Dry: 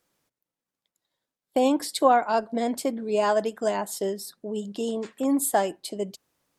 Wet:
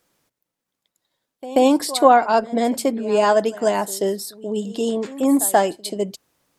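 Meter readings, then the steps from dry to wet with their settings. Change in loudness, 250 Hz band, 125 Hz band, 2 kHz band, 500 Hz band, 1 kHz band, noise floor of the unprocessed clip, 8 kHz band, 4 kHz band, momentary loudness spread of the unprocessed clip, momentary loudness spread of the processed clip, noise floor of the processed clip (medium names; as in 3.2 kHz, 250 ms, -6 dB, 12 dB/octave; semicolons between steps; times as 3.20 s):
+6.5 dB, +6.5 dB, no reading, +6.5 dB, +6.5 dB, +6.5 dB, under -85 dBFS, +6.5 dB, +6.5 dB, 12 LU, 12 LU, -83 dBFS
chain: pre-echo 134 ms -18 dB; trim +6.5 dB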